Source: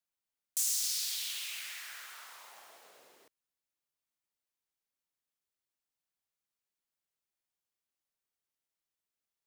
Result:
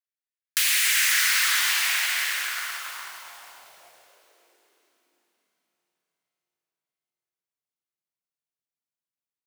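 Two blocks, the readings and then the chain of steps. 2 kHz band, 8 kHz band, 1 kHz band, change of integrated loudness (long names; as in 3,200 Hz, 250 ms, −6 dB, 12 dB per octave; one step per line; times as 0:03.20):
+25.0 dB, +10.0 dB, +21.0 dB, +12.0 dB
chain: sub-harmonics by changed cycles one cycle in 2, inverted
automatic gain control gain up to 3 dB
leveller curve on the samples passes 5
downward compressor 12 to 1, threshold −22 dBFS, peak gain reduction 4 dB
feedback delay with all-pass diffusion 479 ms, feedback 42%, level −12.5 dB
high-pass filter sweep 1,800 Hz → 130 Hz, 0:02.33–0:06.30
feedback echo at a low word length 403 ms, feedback 35%, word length 8 bits, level −10.5 dB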